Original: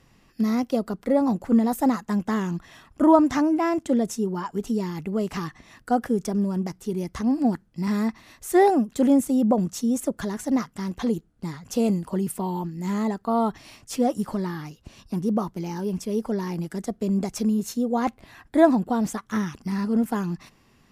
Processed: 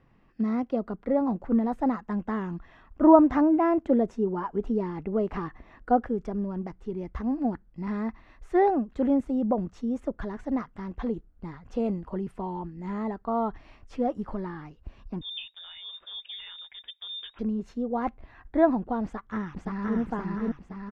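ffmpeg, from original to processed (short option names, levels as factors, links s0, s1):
-filter_complex "[0:a]asettb=1/sr,asplit=3[s0][s1][s2];[s0]atrim=end=3.044[s3];[s1]atrim=start=3.04:end=6.03,asetpts=PTS-STARTPTS,afade=t=in:d=0.004:c=qsin,afade=t=out:st=2.986:d=0.004:c=qsin,equalizer=f=460:w=0.48:g=5.5[s4];[s2]atrim=start=6.026[s5];[s3][s4]acrossfade=d=0.004:c1=hsin:c2=qsin[s6];[s6][s5]acrossfade=d=0.004:c1=qsin:c2=hsin,asettb=1/sr,asplit=3[s7][s8][s9];[s7]atrim=end=15.214[s10];[s8]atrim=start=15.21:end=17.39,asetpts=PTS-STARTPTS,afade=t=in:d=0.004:c=qsin,afade=t=out:st=2.176:d=0.004:c=qsin,lowpass=f=3200:t=q:w=0.5098,lowpass=f=3200:t=q:w=0.6013,lowpass=f=3200:t=q:w=0.9,lowpass=f=3200:t=q:w=2.563,afreqshift=-3800[s11];[s9]atrim=start=17.386[s12];[s10][s11]acrossfade=d=0.004:c1=hsin:c2=qsin[s13];[s13][s12]acrossfade=d=0.004:c1=qsin:c2=hsin,asplit=2[s14][s15];[s15]afade=t=in:st=19.04:d=0.01,afade=t=out:st=19.99:d=0.01,aecho=0:1:520|1040|1560|2080|2600|3120|3640|4160:0.891251|0.490188|0.269603|0.148282|0.081555|0.0448553|0.0246704|0.0135687[s16];[s14][s16]amix=inputs=2:normalize=0,asubboost=boost=7.5:cutoff=51,lowpass=1900,volume=0.668"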